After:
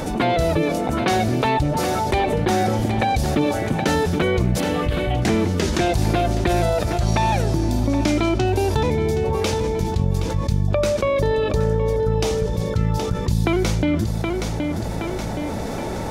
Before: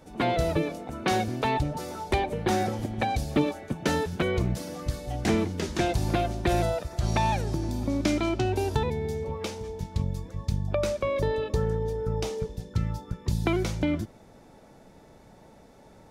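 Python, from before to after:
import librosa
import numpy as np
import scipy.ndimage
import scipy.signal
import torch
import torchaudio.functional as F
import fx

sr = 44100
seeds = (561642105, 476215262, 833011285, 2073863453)

y = fx.high_shelf_res(x, sr, hz=4100.0, db=-11.0, q=3.0, at=(4.6, 5.22))
y = fx.echo_feedback(y, sr, ms=771, feedback_pct=32, wet_db=-14.5)
y = fx.env_flatten(y, sr, amount_pct=70)
y = F.gain(torch.from_numpy(y), 2.5).numpy()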